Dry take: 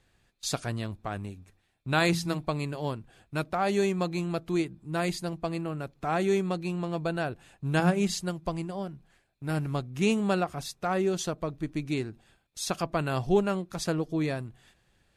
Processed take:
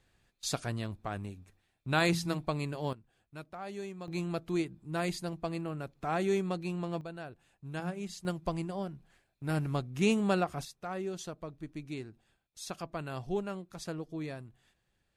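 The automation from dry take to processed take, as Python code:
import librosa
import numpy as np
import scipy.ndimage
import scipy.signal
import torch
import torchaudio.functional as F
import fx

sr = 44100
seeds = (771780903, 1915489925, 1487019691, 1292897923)

y = fx.gain(x, sr, db=fx.steps((0.0, -3.0), (2.93, -15.0), (4.08, -4.0), (7.01, -13.0), (8.25, -2.0), (10.65, -10.0)))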